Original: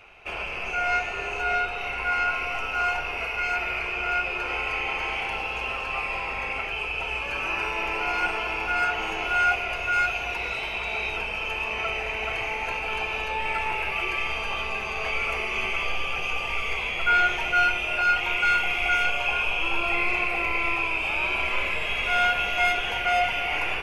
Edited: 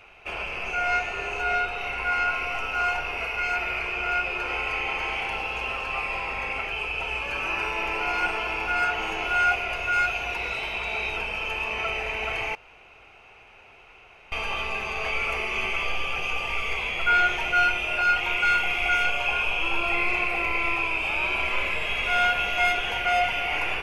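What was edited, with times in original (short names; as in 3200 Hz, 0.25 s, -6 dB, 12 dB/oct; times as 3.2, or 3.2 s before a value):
12.55–14.32 room tone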